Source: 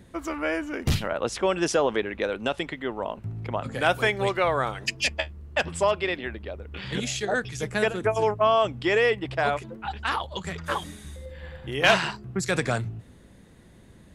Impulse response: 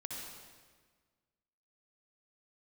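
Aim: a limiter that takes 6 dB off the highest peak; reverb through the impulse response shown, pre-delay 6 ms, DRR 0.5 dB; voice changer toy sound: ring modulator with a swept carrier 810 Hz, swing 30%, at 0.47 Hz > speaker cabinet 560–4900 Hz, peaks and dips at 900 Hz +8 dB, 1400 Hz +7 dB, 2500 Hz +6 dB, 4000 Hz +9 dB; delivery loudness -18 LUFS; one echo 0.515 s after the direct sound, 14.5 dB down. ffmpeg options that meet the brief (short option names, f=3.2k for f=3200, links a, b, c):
-filter_complex "[0:a]alimiter=limit=-14.5dB:level=0:latency=1,aecho=1:1:515:0.188,asplit=2[a][b];[1:a]atrim=start_sample=2205,adelay=6[c];[b][c]afir=irnorm=-1:irlink=0,volume=0dB[d];[a][d]amix=inputs=2:normalize=0,aeval=exprs='val(0)*sin(2*PI*810*n/s+810*0.3/0.47*sin(2*PI*0.47*n/s))':c=same,highpass=560,equalizer=f=900:t=q:w=4:g=8,equalizer=f=1.4k:t=q:w=4:g=7,equalizer=f=2.5k:t=q:w=4:g=6,equalizer=f=4k:t=q:w=4:g=9,lowpass=f=4.9k:w=0.5412,lowpass=f=4.9k:w=1.3066,volume=6dB"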